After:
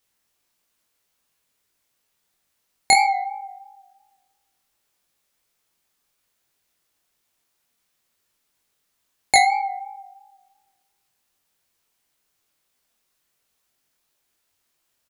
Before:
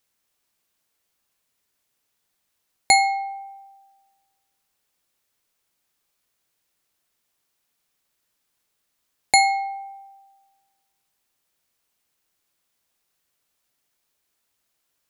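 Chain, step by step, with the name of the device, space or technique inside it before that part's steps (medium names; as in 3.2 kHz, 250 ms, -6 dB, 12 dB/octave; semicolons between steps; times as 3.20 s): double-tracked vocal (doubling 22 ms -8 dB; chorus 2.9 Hz, delay 19 ms, depth 7.6 ms); trim +4.5 dB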